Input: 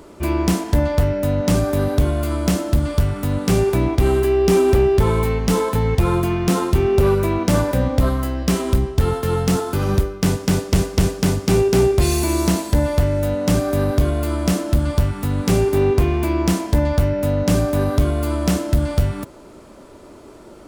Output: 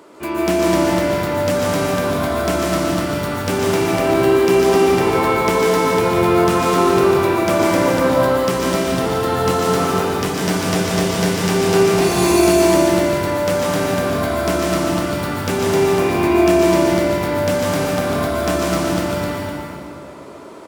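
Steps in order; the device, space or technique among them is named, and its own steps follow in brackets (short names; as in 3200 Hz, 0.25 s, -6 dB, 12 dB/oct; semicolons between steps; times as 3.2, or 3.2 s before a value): stadium PA (HPF 210 Hz 12 dB/oct; bell 1500 Hz +5 dB 2.8 oct; loudspeakers at several distances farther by 51 m -5 dB, 89 m -5 dB; reverb RT60 2.2 s, pre-delay 0.113 s, DRR -3 dB); gain -3.5 dB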